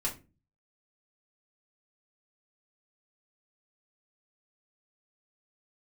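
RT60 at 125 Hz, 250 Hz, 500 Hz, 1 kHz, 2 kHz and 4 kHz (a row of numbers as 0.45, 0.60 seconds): 0.65, 0.50, 0.35, 0.25, 0.25, 0.20 seconds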